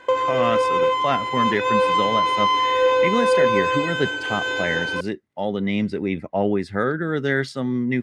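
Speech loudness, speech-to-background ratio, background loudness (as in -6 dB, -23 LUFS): -25.5 LUFS, -5.0 dB, -20.5 LUFS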